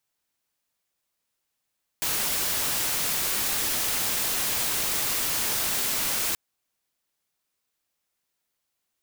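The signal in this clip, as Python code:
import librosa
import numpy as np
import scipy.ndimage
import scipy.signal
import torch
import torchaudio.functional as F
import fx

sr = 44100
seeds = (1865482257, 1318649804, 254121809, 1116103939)

y = fx.noise_colour(sr, seeds[0], length_s=4.33, colour='white', level_db=-26.5)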